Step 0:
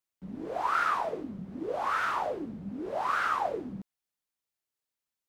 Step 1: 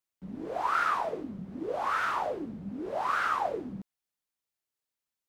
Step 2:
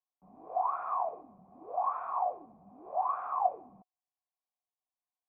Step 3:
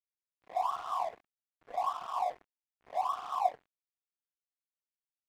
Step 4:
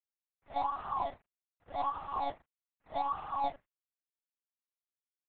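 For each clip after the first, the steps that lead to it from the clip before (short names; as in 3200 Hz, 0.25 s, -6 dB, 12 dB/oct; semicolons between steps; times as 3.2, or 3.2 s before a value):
nothing audible
vocal tract filter a; gain +7.5 dB
loudest bins only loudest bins 32; crossover distortion -45.5 dBFS
median filter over 15 samples; monotone LPC vocoder at 8 kHz 280 Hz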